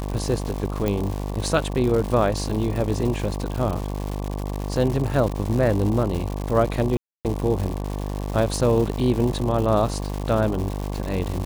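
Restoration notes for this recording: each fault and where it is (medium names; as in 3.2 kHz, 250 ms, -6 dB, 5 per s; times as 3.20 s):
buzz 50 Hz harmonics 23 -28 dBFS
crackle 250 per s -27 dBFS
0.88 s: pop
6.97–7.25 s: dropout 278 ms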